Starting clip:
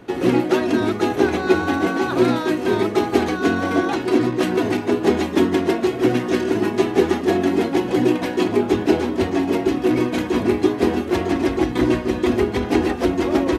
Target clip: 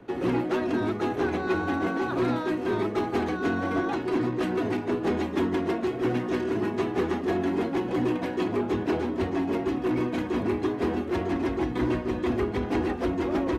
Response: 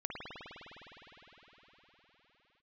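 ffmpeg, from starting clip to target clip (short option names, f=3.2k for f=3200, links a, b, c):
-filter_complex "[0:a]highshelf=f=3k:g=-10.5,acrossover=split=170|880|2400[a][b][c][d];[b]asoftclip=type=tanh:threshold=-17.5dB[e];[a][e][c][d]amix=inputs=4:normalize=0,volume=-5dB"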